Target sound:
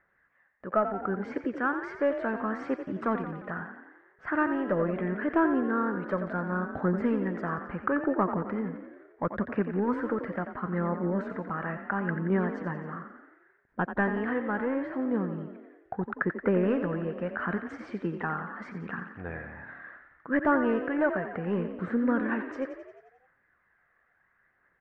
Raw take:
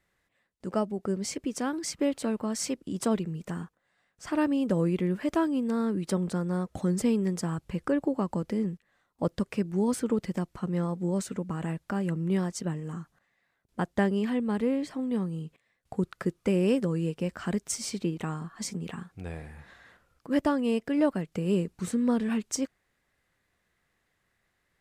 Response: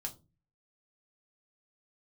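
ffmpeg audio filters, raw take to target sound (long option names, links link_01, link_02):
-filter_complex "[0:a]asplit=2[link_01][link_02];[link_02]highpass=frequency=720:poles=1,volume=12dB,asoftclip=type=tanh:threshold=-13dB[link_03];[link_01][link_03]amix=inputs=2:normalize=0,lowpass=frequency=1200:poles=1,volume=-6dB,aphaser=in_gain=1:out_gain=1:delay=1.8:decay=0.35:speed=0.73:type=triangular,lowpass=frequency=1600:width_type=q:width=3.5,asplit=8[link_04][link_05][link_06][link_07][link_08][link_09][link_10][link_11];[link_05]adelay=88,afreqshift=34,volume=-9.5dB[link_12];[link_06]adelay=176,afreqshift=68,volume=-13.9dB[link_13];[link_07]adelay=264,afreqshift=102,volume=-18.4dB[link_14];[link_08]adelay=352,afreqshift=136,volume=-22.8dB[link_15];[link_09]adelay=440,afreqshift=170,volume=-27.2dB[link_16];[link_10]adelay=528,afreqshift=204,volume=-31.7dB[link_17];[link_11]adelay=616,afreqshift=238,volume=-36.1dB[link_18];[link_04][link_12][link_13][link_14][link_15][link_16][link_17][link_18]amix=inputs=8:normalize=0,volume=-2.5dB"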